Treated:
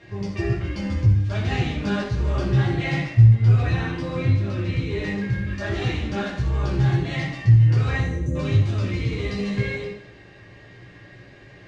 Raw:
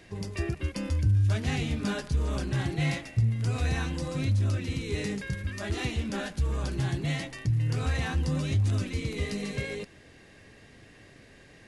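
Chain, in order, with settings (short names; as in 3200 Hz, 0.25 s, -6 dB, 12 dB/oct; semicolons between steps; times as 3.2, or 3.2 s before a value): 3.36–5.44 bell 6800 Hz -5.5 dB 1.3 oct; 8.01–8.35 spectral gain 640–5800 Hz -29 dB; air absorption 140 m; reverb RT60 0.80 s, pre-delay 4 ms, DRR -6.5 dB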